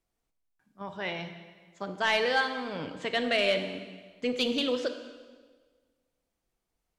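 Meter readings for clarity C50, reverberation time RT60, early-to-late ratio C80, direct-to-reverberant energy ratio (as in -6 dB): 8.5 dB, 1.5 s, 10.0 dB, 7.5 dB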